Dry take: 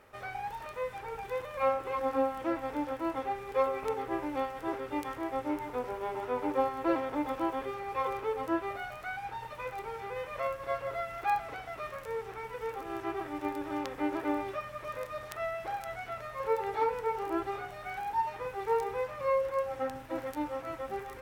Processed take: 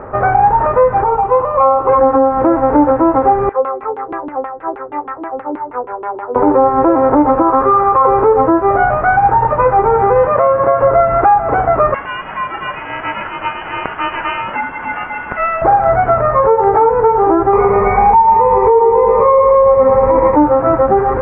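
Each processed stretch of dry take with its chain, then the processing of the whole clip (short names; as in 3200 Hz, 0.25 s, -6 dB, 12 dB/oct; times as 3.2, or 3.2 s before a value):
1.04–1.89 rippled Chebyshev low-pass 3900 Hz, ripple 9 dB + notch 1600 Hz, Q 7.4
3.49–6.36 LFO low-pass saw down 6.3 Hz 260–3400 Hz + pre-emphasis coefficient 0.97
7.42–8.05 ladder low-pass 6300 Hz, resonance 25% + bell 1200 Hz +12.5 dB 0.43 oct + compressor 4:1, threshold -33 dBFS
10.28–10.83 HPF 110 Hz + compressor 2.5:1, threshold -37 dBFS
11.94–15.62 low shelf 350 Hz -7 dB + inverted band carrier 3300 Hz
17.53–20.36 ripple EQ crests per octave 0.88, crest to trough 17 dB + feedback echo 0.113 s, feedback 59%, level -5 dB
whole clip: LPF 1300 Hz 24 dB/oct; compressor, threshold -36 dBFS; maximiser +32 dB; gain -1 dB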